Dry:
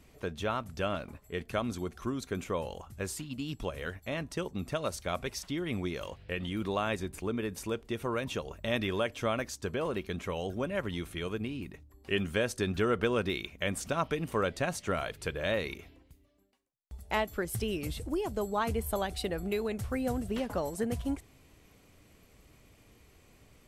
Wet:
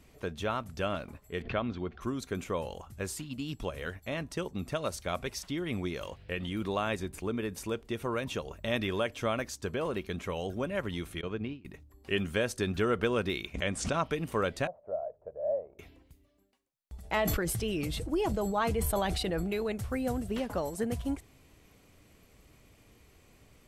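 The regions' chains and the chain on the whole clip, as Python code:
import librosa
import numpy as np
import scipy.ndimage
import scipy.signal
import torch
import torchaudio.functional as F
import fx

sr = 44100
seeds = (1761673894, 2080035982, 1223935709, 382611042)

y = fx.chain(x, sr, fx.lowpass(hz=3600.0, slope=24),
    fx.pre_swell(db_per_s=140.0), at=(1.42, 2.01))
y = fx.chain(y, sr, fx.highpass(hz=40.0, slope=12),
    fx.gate_hold(open_db=-26.0, close_db=-30.0, hold_ms=71.0, range_db=-21, attack_ms=1.4, release_ms=100.0),
    fx.air_absorb(metres=160.0), at=(11.21, 11.65))
y = fx.chain(y, sr, fx.lowpass(hz=8900.0, slope=24),
    fx.pre_swell(db_per_s=71.0), at=(13.54, 14.06))
y = fx.chain(y, sr, fx.cvsd(bps=64000),
    fx.ladder_lowpass(hz=670.0, resonance_pct=75),
    fx.low_shelf_res(hz=420.0, db=-8.0, q=1.5), at=(14.67, 15.79))
y = fx.chain(y, sr, fx.high_shelf(hz=9800.0, db=-8.5),
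    fx.comb(ms=6.2, depth=0.31),
    fx.sustainer(db_per_s=20.0), at=(16.96, 19.72))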